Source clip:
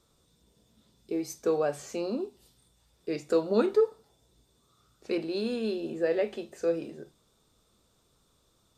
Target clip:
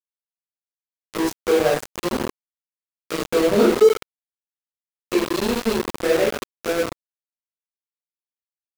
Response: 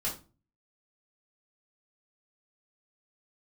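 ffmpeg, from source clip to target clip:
-filter_complex "[1:a]atrim=start_sample=2205,asetrate=23814,aresample=44100[link_01];[0:a][link_01]afir=irnorm=-1:irlink=0,aeval=exprs='val(0)*gte(abs(val(0)),0.1)':channel_layout=same"

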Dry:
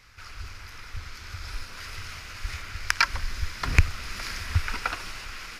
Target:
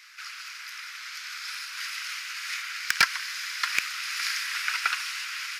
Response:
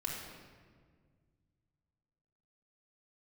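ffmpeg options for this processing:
-af "highpass=frequency=1400:width=0.5412,highpass=frequency=1400:width=1.3066,asoftclip=type=tanh:threshold=-18dB,volume=7dB"

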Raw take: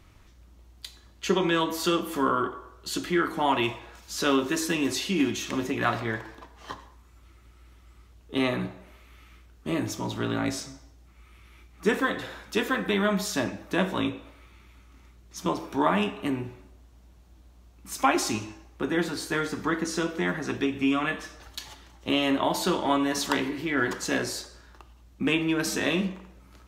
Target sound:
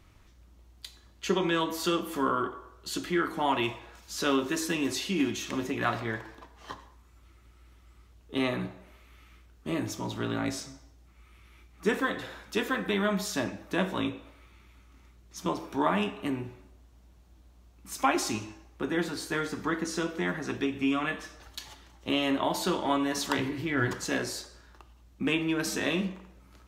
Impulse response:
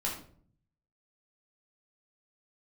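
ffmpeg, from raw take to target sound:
-filter_complex "[0:a]asettb=1/sr,asplit=3[link_01][link_02][link_03];[link_01]atrim=end=23.384[link_04];[link_02]atrim=start=23.38:end=24.05,asetpts=PTS-STARTPTS,afade=type=in:duration=0.004:curve=qsin,afade=type=out:start_time=0.666:duration=0.004:curve=qsin,equalizer=frequency=110:width_type=o:width=0.65:gain=14[link_05];[link_03]atrim=start=24.046[link_06];[link_04][link_05]acrossfade=duration=0.004:curve1=hsin:curve2=qsin[link_07];[link_07][link_06]acrossfade=duration=0.004:curve1=qsin:curve2=hsin,volume=-3dB"

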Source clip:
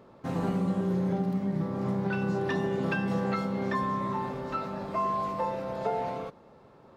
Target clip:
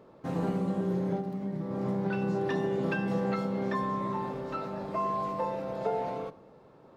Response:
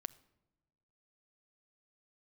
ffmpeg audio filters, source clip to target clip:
-filter_complex "[0:a]asettb=1/sr,asplit=3[link_01][link_02][link_03];[link_01]atrim=end=1.164[link_04];[link_02]atrim=start=1.16:end=1.71,asetpts=PTS-STARTPTS,afade=type=in:duration=0.004:curve=qsin,afade=type=out:start_time=0.546:duration=0.004:curve=qsin,acompressor=threshold=-29dB:ratio=6[link_05];[link_03]atrim=start=1.706[link_06];[link_04][link_05]acrossfade=duration=0.004:curve1=hsin:curve2=qsin[link_07];[link_07][link_06]acrossfade=duration=0.004:curve1=qsin:curve2=hsin,equalizer=frequency=430:width=0.9:gain=4[link_08];[1:a]atrim=start_sample=2205[link_09];[link_08][link_09]afir=irnorm=-1:irlink=0"

